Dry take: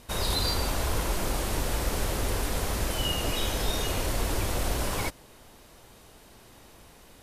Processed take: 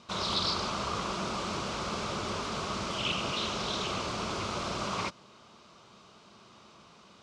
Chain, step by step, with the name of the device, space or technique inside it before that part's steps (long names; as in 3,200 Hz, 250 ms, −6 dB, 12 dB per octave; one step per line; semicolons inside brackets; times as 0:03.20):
full-range speaker at full volume (highs frequency-modulated by the lows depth 0.69 ms; loudspeaker in its box 160–6,100 Hz, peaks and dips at 200 Hz +5 dB, 280 Hz −8 dB, 490 Hz −6 dB, 790 Hz −5 dB, 1,200 Hz +8 dB, 1,800 Hz −10 dB)